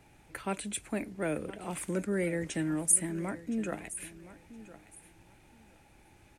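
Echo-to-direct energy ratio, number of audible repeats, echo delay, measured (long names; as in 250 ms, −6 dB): −16.5 dB, 2, 1,017 ms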